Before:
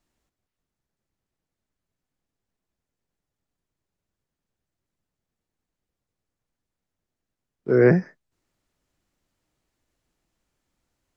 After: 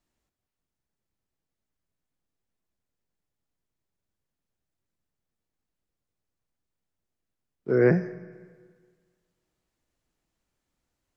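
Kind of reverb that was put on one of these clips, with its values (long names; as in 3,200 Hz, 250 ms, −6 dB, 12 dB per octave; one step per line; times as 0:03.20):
four-comb reverb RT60 1.7 s, combs from 30 ms, DRR 15 dB
level −4 dB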